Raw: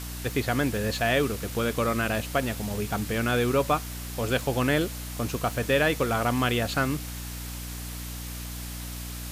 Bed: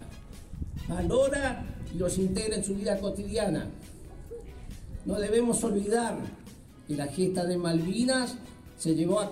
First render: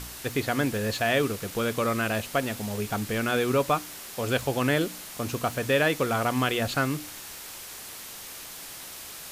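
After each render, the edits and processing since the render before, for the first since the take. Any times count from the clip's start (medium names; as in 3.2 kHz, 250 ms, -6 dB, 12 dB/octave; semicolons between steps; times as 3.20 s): de-hum 60 Hz, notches 5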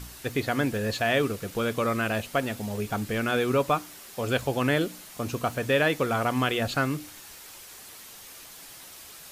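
noise reduction 6 dB, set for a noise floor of -42 dBFS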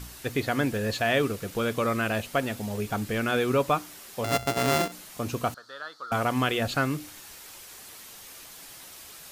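4.24–4.92 s: sorted samples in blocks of 64 samples; 5.54–6.12 s: two resonant band-passes 2.4 kHz, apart 1.7 oct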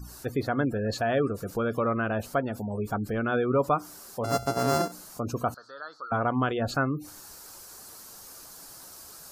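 spectral gate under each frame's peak -25 dB strong; high-order bell 2.6 kHz -11 dB 1.2 oct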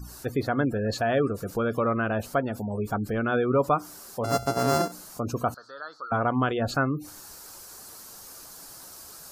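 trim +1.5 dB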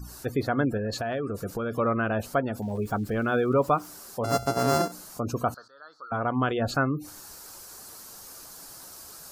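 0.77–1.79 s: compression, threshold -26 dBFS; 2.62–3.88 s: small samples zeroed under -47.5 dBFS; 5.68–6.52 s: fade in, from -14 dB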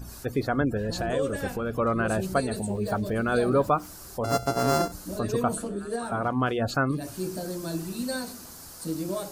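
add bed -5 dB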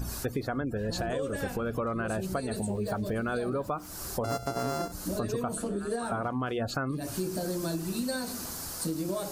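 in parallel at +0.5 dB: peak limiter -18.5 dBFS, peak gain reduction 8 dB; on the sum: compression 6:1, threshold -29 dBFS, peak gain reduction 14.5 dB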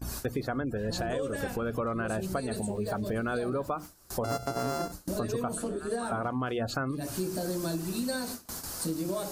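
hum notches 50/100/150/200 Hz; gate with hold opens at -26 dBFS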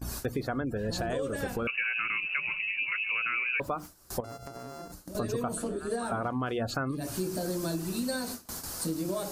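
1.67–3.60 s: frequency inversion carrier 2.8 kHz; 4.20–5.15 s: compression 5:1, threshold -40 dBFS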